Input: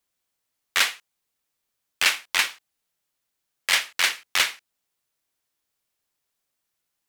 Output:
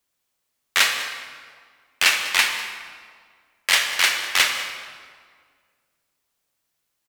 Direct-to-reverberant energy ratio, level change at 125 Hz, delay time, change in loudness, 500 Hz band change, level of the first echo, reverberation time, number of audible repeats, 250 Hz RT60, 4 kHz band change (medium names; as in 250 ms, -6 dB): 3.5 dB, no reading, 198 ms, +3.0 dB, +4.5 dB, -15.0 dB, 1.9 s, 1, 2.1 s, +3.5 dB